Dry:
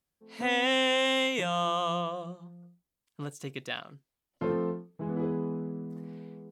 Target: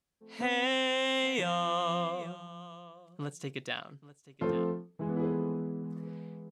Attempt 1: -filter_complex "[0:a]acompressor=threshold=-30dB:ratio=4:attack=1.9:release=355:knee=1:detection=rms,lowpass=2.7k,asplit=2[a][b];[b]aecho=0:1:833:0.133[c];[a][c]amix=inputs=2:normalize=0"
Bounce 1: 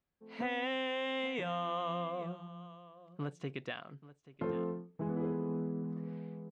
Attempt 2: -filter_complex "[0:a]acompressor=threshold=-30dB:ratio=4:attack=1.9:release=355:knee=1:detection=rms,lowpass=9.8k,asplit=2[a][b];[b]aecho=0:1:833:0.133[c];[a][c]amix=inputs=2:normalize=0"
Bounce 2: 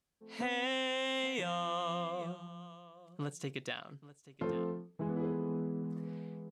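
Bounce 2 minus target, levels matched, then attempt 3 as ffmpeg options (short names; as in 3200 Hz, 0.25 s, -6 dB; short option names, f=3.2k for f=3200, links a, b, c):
compressor: peak gain reduction +5.5 dB
-filter_complex "[0:a]acompressor=threshold=-23dB:ratio=4:attack=1.9:release=355:knee=1:detection=rms,lowpass=9.8k,asplit=2[a][b];[b]aecho=0:1:833:0.133[c];[a][c]amix=inputs=2:normalize=0"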